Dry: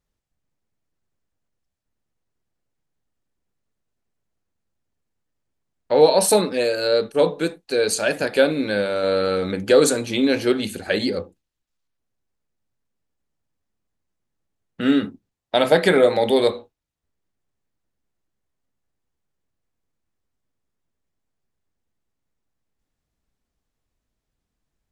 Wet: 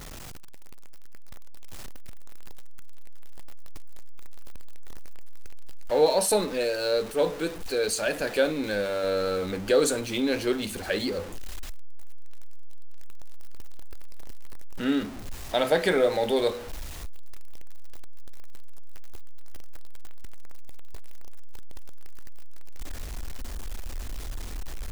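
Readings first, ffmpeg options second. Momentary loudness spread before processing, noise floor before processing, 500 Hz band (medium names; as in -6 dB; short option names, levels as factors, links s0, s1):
8 LU, -80 dBFS, -6.5 dB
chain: -af "aeval=exprs='val(0)+0.5*0.0422*sgn(val(0))':c=same,asubboost=boost=4.5:cutoff=59,volume=0.447"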